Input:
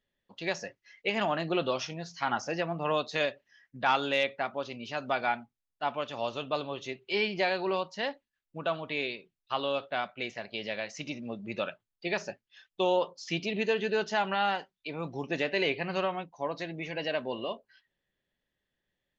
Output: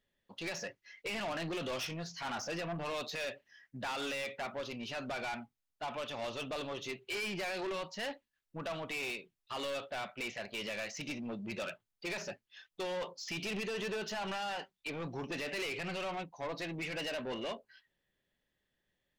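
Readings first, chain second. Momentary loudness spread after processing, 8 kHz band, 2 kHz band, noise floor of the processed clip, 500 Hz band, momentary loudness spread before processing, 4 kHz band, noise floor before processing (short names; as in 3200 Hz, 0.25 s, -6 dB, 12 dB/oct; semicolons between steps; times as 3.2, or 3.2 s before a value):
7 LU, n/a, -6.0 dB, -85 dBFS, -8.5 dB, 10 LU, -5.0 dB, under -85 dBFS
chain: dynamic EQ 2500 Hz, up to +5 dB, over -43 dBFS, Q 1.2; limiter -20.5 dBFS, peak gain reduction 9 dB; soft clip -35.5 dBFS, distortion -6 dB; gain +1 dB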